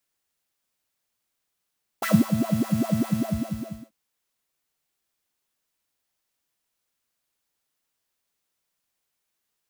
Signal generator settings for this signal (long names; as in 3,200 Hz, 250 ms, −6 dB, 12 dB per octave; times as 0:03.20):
subtractive patch with filter wobble A3, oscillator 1 triangle, interval +19 semitones, oscillator 2 level −15 dB, noise −14 dB, filter highpass, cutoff 160 Hz, Q 5.5, filter envelope 2 octaves, attack 12 ms, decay 0.23 s, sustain −9 dB, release 0.84 s, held 1.05 s, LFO 5 Hz, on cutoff 1.8 octaves